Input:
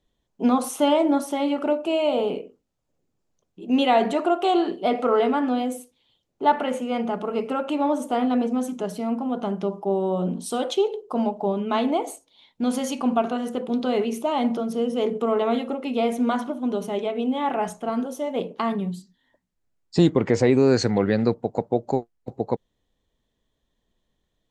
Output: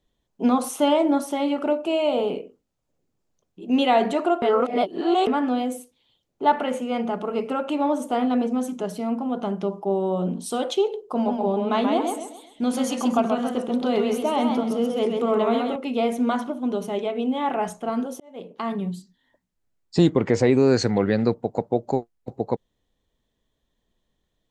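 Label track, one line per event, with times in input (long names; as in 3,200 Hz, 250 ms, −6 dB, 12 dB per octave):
4.420000	5.270000	reverse
11.140000	15.760000	feedback echo with a swinging delay time 131 ms, feedback 37%, depth 111 cents, level −4.5 dB
18.200000	18.870000	fade in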